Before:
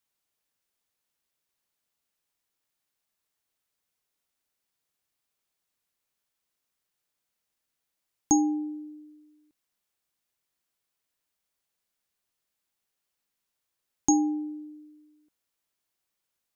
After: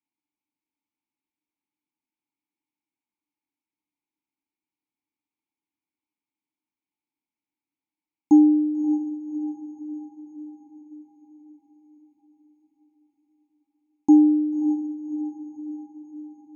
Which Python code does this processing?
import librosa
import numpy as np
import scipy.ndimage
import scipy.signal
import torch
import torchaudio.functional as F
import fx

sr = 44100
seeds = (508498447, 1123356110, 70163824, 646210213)

y = fx.vowel_filter(x, sr, vowel='u')
y = fx.low_shelf(y, sr, hz=230.0, db=11.0)
y = fx.echo_diffused(y, sr, ms=596, feedback_pct=57, wet_db=-11.5)
y = F.gain(torch.from_numpy(y), 6.0).numpy()